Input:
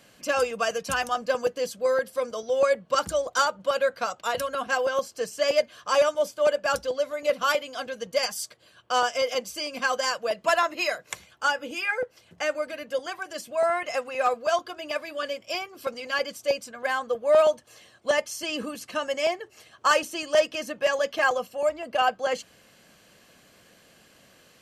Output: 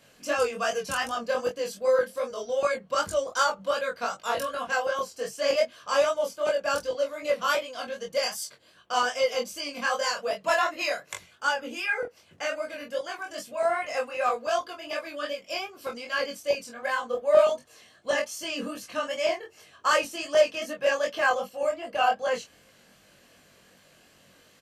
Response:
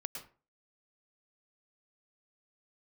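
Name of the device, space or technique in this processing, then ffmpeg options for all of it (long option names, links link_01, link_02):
double-tracked vocal: -filter_complex "[0:a]asplit=2[link_01][link_02];[link_02]adelay=21,volume=-4dB[link_03];[link_01][link_03]amix=inputs=2:normalize=0,flanger=delay=19:depth=6.3:speed=2.6"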